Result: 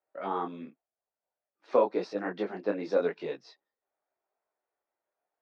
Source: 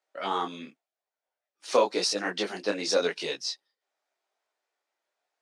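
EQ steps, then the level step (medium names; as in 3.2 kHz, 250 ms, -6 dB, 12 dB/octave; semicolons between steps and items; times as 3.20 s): tape spacing loss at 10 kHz 32 dB; treble shelf 3 kHz -12 dB; band-stop 3 kHz, Q 16; +1.0 dB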